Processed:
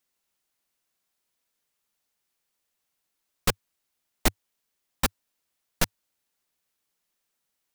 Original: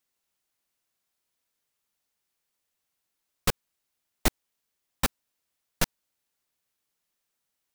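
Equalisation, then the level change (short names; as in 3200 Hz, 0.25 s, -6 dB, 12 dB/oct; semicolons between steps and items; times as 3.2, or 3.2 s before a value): bell 100 Hz -9.5 dB 0.24 oct; +1.5 dB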